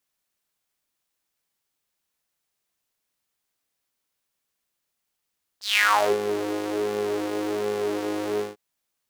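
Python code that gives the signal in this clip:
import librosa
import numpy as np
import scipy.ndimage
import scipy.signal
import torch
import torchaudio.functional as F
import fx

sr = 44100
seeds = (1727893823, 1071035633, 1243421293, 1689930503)

y = fx.sub_patch_pwm(sr, seeds[0], note=44, wave2='saw', interval_st=0, detune_cents=24, level2_db=-9.0, sub_db=-15.0, noise_db=-30.0, kind='highpass', cutoff_hz=330.0, q=6.1, env_oct=4.0, env_decay_s=0.51, env_sustain_pct=5, attack_ms=153.0, decay_s=0.41, sustain_db=-14.5, release_s=0.16, note_s=2.79, lfo_hz=1.3, width_pct=43, width_swing_pct=11)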